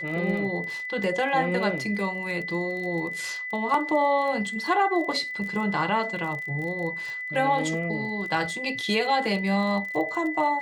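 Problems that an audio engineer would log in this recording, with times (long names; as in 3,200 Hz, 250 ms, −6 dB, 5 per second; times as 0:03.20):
surface crackle 21 per second −33 dBFS
whistle 2,000 Hz −31 dBFS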